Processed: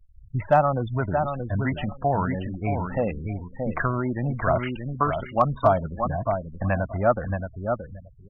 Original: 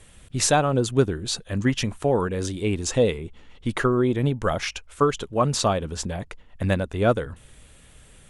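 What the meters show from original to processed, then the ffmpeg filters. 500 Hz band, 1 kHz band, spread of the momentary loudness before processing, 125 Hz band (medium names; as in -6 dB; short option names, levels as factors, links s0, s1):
-1.5 dB, +3.5 dB, 11 LU, -0.5 dB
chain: -filter_complex "[0:a]afftfilt=real='re*pow(10,7/40*sin(2*PI*(1.7*log(max(b,1)*sr/1024/100)/log(2)-(-1.7)*(pts-256)/sr)))':imag='im*pow(10,7/40*sin(2*PI*(1.7*log(max(b,1)*sr/1024/100)/log(2)-(-1.7)*(pts-256)/sr)))':win_size=1024:overlap=0.75,aresample=8000,acrusher=bits=6:mode=log:mix=0:aa=0.000001,aresample=44100,aecho=1:1:625|1250|1875:0.473|0.0852|0.0153,acrossover=split=420[s0][s1];[s0]alimiter=limit=0.126:level=0:latency=1:release=25[s2];[s2][s1]amix=inputs=2:normalize=0,lowpass=1500,afftfilt=real='re*gte(hypot(re,im),0.02)':imag='im*gte(hypot(re,im),0.02)':win_size=1024:overlap=0.75,crystalizer=i=1:c=0,firequalizer=gain_entry='entry(180,0);entry(440,-12);entry(640,5);entry(1000,2)':delay=0.05:min_phase=1,asoftclip=type=hard:threshold=0.398"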